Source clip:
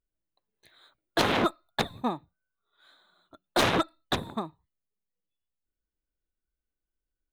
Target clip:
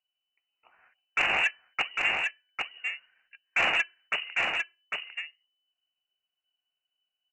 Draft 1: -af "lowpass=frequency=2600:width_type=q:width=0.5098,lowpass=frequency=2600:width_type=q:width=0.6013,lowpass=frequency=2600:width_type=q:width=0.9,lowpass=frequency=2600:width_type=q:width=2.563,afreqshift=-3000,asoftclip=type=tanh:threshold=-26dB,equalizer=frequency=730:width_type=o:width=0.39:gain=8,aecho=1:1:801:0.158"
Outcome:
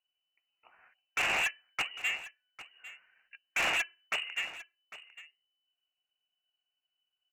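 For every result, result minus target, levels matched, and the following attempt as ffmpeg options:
soft clipping: distortion +12 dB; echo-to-direct −12 dB
-af "lowpass=frequency=2600:width_type=q:width=0.5098,lowpass=frequency=2600:width_type=q:width=0.6013,lowpass=frequency=2600:width_type=q:width=0.9,lowpass=frequency=2600:width_type=q:width=2.563,afreqshift=-3000,asoftclip=type=tanh:threshold=-15dB,equalizer=frequency=730:width_type=o:width=0.39:gain=8,aecho=1:1:801:0.158"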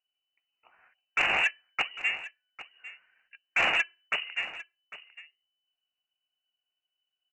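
echo-to-direct −12 dB
-af "lowpass=frequency=2600:width_type=q:width=0.5098,lowpass=frequency=2600:width_type=q:width=0.6013,lowpass=frequency=2600:width_type=q:width=0.9,lowpass=frequency=2600:width_type=q:width=2.563,afreqshift=-3000,asoftclip=type=tanh:threshold=-15dB,equalizer=frequency=730:width_type=o:width=0.39:gain=8,aecho=1:1:801:0.631"

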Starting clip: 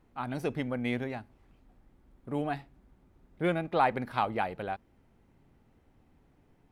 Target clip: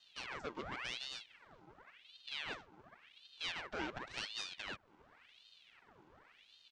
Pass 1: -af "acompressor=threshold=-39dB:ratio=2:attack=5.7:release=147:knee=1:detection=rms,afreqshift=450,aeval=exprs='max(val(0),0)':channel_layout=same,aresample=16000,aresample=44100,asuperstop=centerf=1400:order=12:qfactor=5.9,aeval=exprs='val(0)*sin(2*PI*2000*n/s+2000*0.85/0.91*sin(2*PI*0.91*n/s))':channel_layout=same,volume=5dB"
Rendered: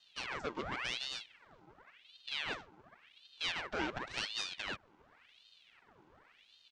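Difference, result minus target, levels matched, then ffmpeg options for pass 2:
downward compressor: peak gain reduction −4.5 dB
-af "acompressor=threshold=-48dB:ratio=2:attack=5.7:release=147:knee=1:detection=rms,afreqshift=450,aeval=exprs='max(val(0),0)':channel_layout=same,aresample=16000,aresample=44100,asuperstop=centerf=1400:order=12:qfactor=5.9,aeval=exprs='val(0)*sin(2*PI*2000*n/s+2000*0.85/0.91*sin(2*PI*0.91*n/s))':channel_layout=same,volume=5dB"

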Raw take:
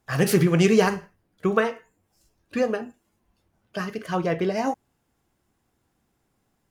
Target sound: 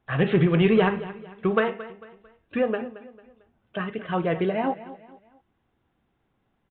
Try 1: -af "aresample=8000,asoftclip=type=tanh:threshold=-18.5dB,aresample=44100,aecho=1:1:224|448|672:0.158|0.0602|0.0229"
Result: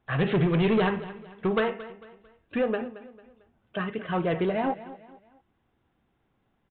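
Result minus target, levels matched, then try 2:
soft clipping: distortion +11 dB
-af "aresample=8000,asoftclip=type=tanh:threshold=-9dB,aresample=44100,aecho=1:1:224|448|672:0.158|0.0602|0.0229"

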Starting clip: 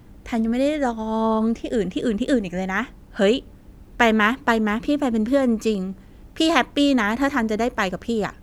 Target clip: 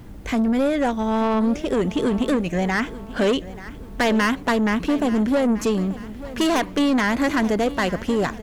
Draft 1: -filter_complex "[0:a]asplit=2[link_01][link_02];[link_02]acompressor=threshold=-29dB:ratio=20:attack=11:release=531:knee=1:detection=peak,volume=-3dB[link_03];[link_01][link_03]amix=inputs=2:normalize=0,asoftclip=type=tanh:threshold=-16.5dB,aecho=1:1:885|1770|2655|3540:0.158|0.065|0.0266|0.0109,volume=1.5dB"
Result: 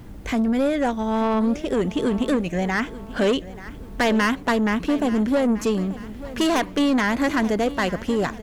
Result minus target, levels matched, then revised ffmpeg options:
downward compressor: peak gain reduction +7.5 dB
-filter_complex "[0:a]asplit=2[link_01][link_02];[link_02]acompressor=threshold=-21dB:ratio=20:attack=11:release=531:knee=1:detection=peak,volume=-3dB[link_03];[link_01][link_03]amix=inputs=2:normalize=0,asoftclip=type=tanh:threshold=-16.5dB,aecho=1:1:885|1770|2655|3540:0.158|0.065|0.0266|0.0109,volume=1.5dB"

